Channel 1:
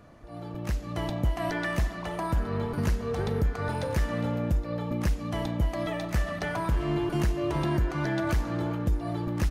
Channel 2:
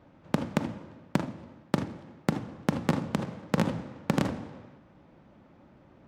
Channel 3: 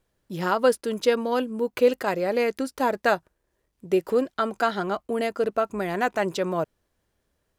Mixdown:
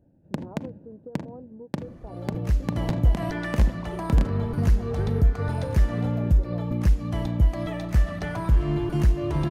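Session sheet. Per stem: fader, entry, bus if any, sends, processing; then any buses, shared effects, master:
-2.5 dB, 1.80 s, no send, low shelf 230 Hz +6 dB
-5.0 dB, 0.00 s, no send, Wiener smoothing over 41 samples; notch 1300 Hz, Q 5.1
-14.0 dB, 0.00 s, no send, inverse Chebyshev low-pass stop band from 2100 Hz, stop band 50 dB; compressor, threshold -26 dBFS, peak gain reduction 12 dB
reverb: off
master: low shelf 190 Hz +5 dB

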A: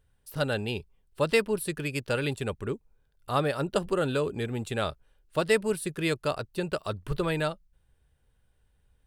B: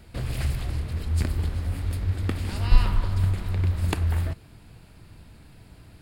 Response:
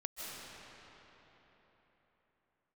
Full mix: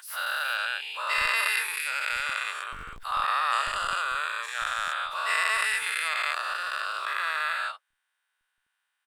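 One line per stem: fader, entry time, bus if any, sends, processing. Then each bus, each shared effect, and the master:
+2.5 dB, 0.00 s, no send, no echo send, spectral dilation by 0.48 s; HPF 1200 Hz 24 dB/oct; high shelf 2300 Hz -11 dB
-18.0 dB, 0.00 s, no send, echo send -7 dB, Schmitt trigger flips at -15.5 dBFS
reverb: off
echo: feedback echo 0.947 s, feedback 39%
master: backwards sustainer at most 100 dB/s

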